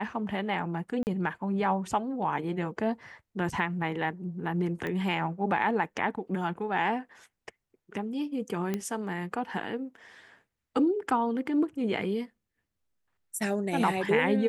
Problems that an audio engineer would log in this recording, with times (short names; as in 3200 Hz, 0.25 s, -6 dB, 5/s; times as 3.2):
1.03–1.07 gap 39 ms
4.87 pop -21 dBFS
8.74 pop -17 dBFS